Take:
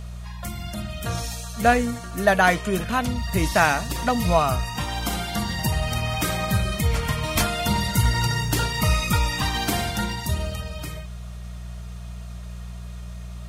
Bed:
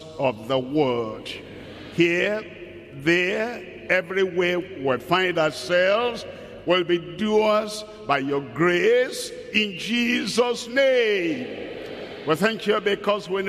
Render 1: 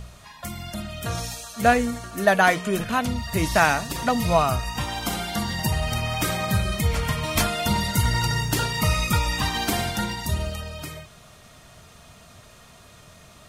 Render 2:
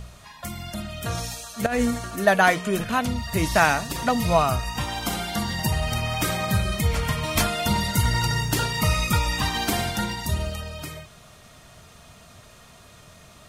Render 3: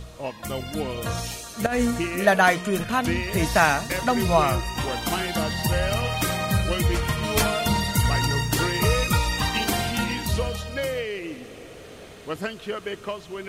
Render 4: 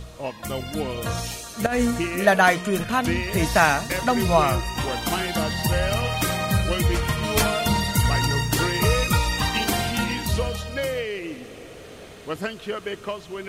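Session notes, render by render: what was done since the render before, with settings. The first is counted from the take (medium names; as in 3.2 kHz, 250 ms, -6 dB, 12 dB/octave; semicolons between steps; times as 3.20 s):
de-hum 60 Hz, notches 3
1.66–2.16 s: compressor with a negative ratio -23 dBFS
add bed -9.5 dB
trim +1 dB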